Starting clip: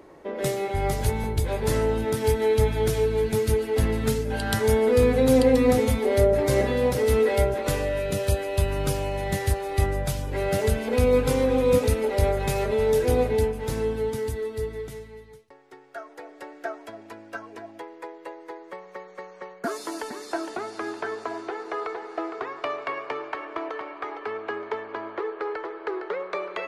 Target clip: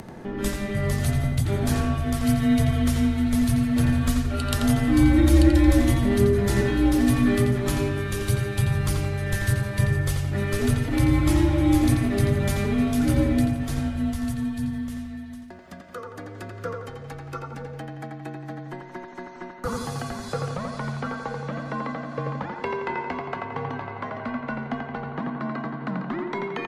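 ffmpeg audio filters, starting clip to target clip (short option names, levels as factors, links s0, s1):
-filter_complex "[0:a]afreqshift=-190,acompressor=mode=upward:threshold=0.0224:ratio=2.5,asplit=2[s0][s1];[s1]adelay=86,lowpass=f=3800:p=1,volume=0.668,asplit=2[s2][s3];[s3]adelay=86,lowpass=f=3800:p=1,volume=0.5,asplit=2[s4][s5];[s5]adelay=86,lowpass=f=3800:p=1,volume=0.5,asplit=2[s6][s7];[s7]adelay=86,lowpass=f=3800:p=1,volume=0.5,asplit=2[s8][s9];[s9]adelay=86,lowpass=f=3800:p=1,volume=0.5,asplit=2[s10][s11];[s11]adelay=86,lowpass=f=3800:p=1,volume=0.5,asplit=2[s12][s13];[s13]adelay=86,lowpass=f=3800:p=1,volume=0.5[s14];[s0][s2][s4][s6][s8][s10][s12][s14]amix=inputs=8:normalize=0"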